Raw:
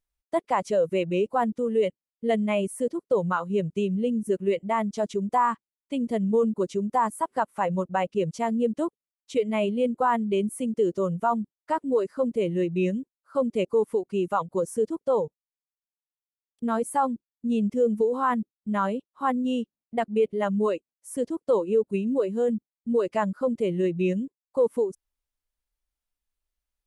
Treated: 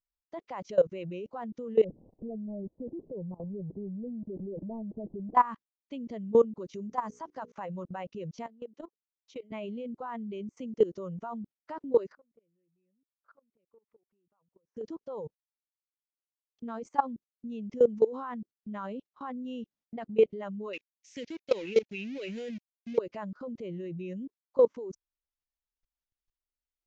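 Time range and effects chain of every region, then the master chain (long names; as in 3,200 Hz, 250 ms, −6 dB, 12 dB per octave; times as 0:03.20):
0:01.84–0:05.35: converter with a step at zero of −31.5 dBFS + Gaussian smoothing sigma 19 samples + one half of a high-frequency compander encoder only
0:06.74–0:07.52: parametric band 6,100 Hz +9.5 dB 0.4 octaves + mains-hum notches 60/120/180/240/300/360/420/480 Hz
0:08.46–0:09.52: high-pass filter 290 Hz + downward compressor 5 to 1, threshold −40 dBFS
0:12.12–0:14.77: low-pass filter 2,300 Hz + downward compressor 8 to 1, threshold −33 dBFS + gate with flip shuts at −46 dBFS, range −26 dB
0:20.73–0:22.98: mu-law and A-law mismatch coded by A + high shelf with overshoot 1,600 Hz +12.5 dB, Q 3
whole clip: Butterworth low-pass 6,600 Hz 72 dB per octave; output level in coarse steps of 20 dB; level +2.5 dB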